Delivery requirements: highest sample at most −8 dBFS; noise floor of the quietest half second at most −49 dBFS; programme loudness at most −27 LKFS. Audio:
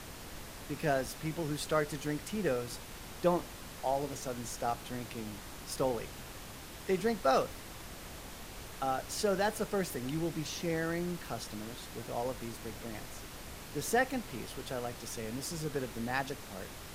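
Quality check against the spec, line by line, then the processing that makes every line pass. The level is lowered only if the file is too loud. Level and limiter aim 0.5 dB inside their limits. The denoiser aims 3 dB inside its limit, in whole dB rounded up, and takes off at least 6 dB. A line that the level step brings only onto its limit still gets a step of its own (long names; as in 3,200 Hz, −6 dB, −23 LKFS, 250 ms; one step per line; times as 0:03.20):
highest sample −16.5 dBFS: in spec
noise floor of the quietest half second −47 dBFS: out of spec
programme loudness −36.0 LKFS: in spec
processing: broadband denoise 6 dB, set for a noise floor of −47 dBFS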